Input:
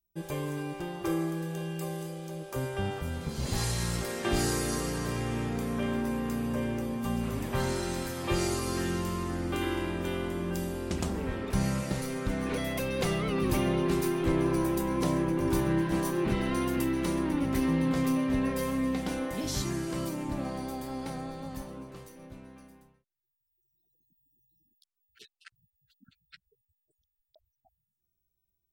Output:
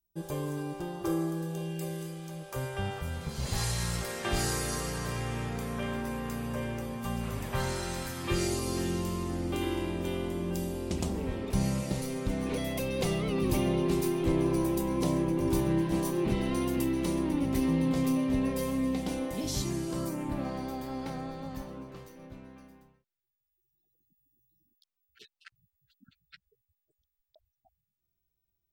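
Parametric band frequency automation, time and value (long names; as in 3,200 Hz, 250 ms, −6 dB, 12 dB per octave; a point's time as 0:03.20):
parametric band −8 dB 0.91 octaves
0:01.46 2,200 Hz
0:02.55 290 Hz
0:07.99 290 Hz
0:08.60 1,500 Hz
0:19.83 1,500 Hz
0:20.48 9,700 Hz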